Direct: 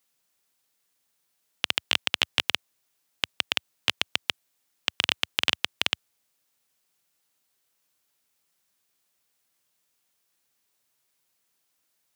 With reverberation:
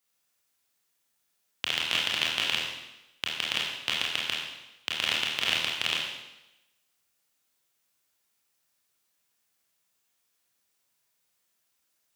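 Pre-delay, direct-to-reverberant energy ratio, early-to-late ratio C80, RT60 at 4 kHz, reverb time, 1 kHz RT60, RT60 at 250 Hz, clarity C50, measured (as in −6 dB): 24 ms, −4.0 dB, 4.0 dB, 0.95 s, 0.95 s, 0.95 s, 0.95 s, 1.0 dB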